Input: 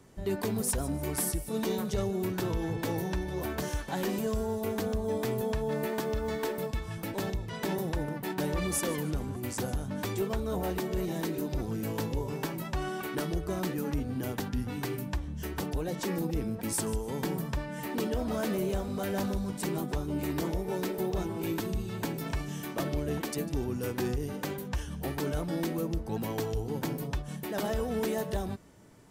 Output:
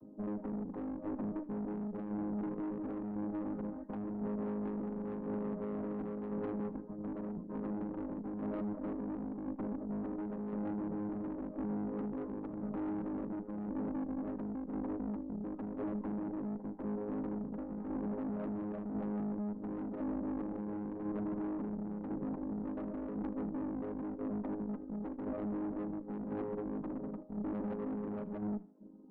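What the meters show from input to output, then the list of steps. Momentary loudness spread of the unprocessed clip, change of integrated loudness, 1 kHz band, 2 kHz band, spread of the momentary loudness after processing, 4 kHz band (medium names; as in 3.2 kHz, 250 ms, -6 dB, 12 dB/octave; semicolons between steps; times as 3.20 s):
4 LU, -6.5 dB, -9.5 dB, -18.5 dB, 3 LU, under -30 dB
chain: vocoder on a held chord major triad, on G#3; reverb removal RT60 0.55 s; low-pass 1.1 kHz 24 dB/octave; tilt EQ -4.5 dB/octave; hum notches 60/120/180/240/300 Hz; compression 4:1, threshold -26 dBFS, peak gain reduction 7 dB; peak limiter -26 dBFS, peak gain reduction 8.5 dB; valve stage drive 35 dB, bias 0.55; tremolo saw down 0.95 Hz, depth 40%; thinning echo 77 ms, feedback 42%, high-pass 180 Hz, level -19 dB; trim +1.5 dB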